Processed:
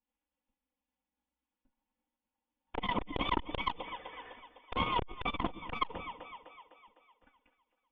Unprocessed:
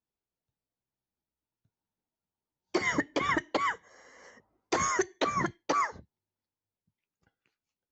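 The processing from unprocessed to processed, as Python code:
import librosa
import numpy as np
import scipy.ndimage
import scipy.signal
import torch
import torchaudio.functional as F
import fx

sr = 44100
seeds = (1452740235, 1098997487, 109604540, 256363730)

p1 = fx.lower_of_two(x, sr, delay_ms=4.0)
p2 = fx.peak_eq(p1, sr, hz=920.0, db=10.0, octaves=0.23)
p3 = fx.env_flanger(p2, sr, rest_ms=3.6, full_db=-30.0)
p4 = fx.volume_shaper(p3, sr, bpm=111, per_beat=1, depth_db=-5, release_ms=83.0, shape='slow start')
p5 = p3 + (p4 * 10.0 ** (1.0 / 20.0))
p6 = fx.brickwall_lowpass(p5, sr, high_hz=3600.0)
p7 = p6 + fx.echo_split(p6, sr, split_hz=380.0, low_ms=119, high_ms=253, feedback_pct=52, wet_db=-16, dry=0)
y = fx.transformer_sat(p7, sr, knee_hz=550.0)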